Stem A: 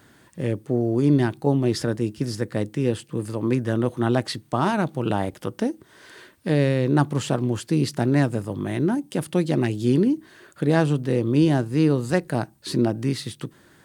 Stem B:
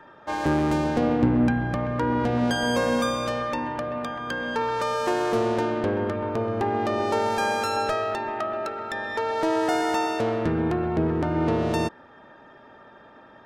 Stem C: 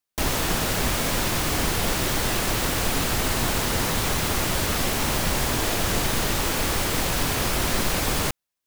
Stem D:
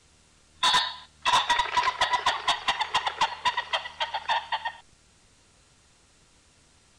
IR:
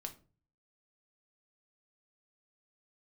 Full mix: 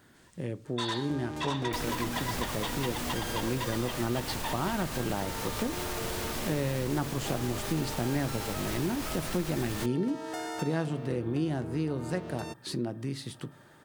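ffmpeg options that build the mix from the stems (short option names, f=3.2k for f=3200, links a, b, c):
-filter_complex "[0:a]dynaudnorm=f=360:g=17:m=11.5dB,volume=-8.5dB,asplit=2[a][b];[b]volume=-4.5dB[c];[1:a]highshelf=f=4.4k:g=10.5,adelay=650,volume=-11dB[d];[2:a]alimiter=limit=-21dB:level=0:latency=1:release=342,adelay=1550,volume=1dB[e];[3:a]adelay=150,volume=-5.5dB[f];[4:a]atrim=start_sample=2205[g];[c][g]afir=irnorm=-1:irlink=0[h];[a][d][e][f][h]amix=inputs=5:normalize=0,acompressor=threshold=-34dB:ratio=2"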